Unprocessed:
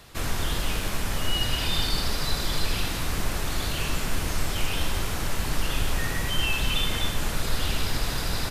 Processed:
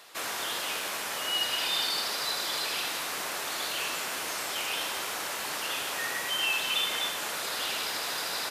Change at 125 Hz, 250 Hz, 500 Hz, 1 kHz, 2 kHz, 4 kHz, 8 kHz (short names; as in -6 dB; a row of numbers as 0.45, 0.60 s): -27.0, -13.0, -3.5, -0.5, 0.0, 0.0, 0.0 dB